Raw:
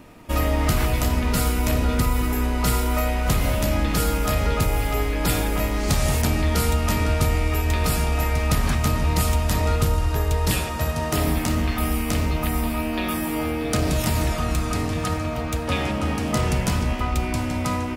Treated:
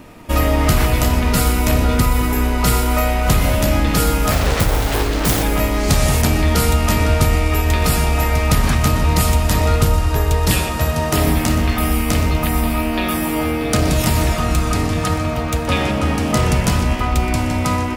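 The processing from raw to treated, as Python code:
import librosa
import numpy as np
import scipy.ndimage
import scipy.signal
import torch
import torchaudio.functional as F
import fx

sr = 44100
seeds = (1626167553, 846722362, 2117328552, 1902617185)

p1 = fx.self_delay(x, sr, depth_ms=1.0, at=(4.31, 5.43))
p2 = p1 + fx.echo_feedback(p1, sr, ms=123, feedback_pct=47, wet_db=-15.0, dry=0)
y = p2 * 10.0 ** (6.0 / 20.0)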